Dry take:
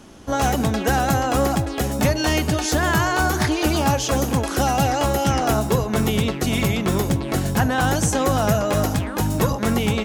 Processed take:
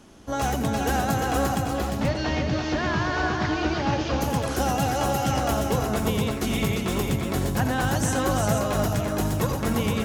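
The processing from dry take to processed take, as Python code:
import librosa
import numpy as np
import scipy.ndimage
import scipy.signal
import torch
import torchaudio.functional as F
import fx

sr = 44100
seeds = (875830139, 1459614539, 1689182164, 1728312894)

y = fx.cvsd(x, sr, bps=32000, at=(1.73, 4.21))
y = fx.echo_multitap(y, sr, ms=(86, 349, 481), db=(-10.5, -5.5, -7.5))
y = F.gain(torch.from_numpy(y), -6.0).numpy()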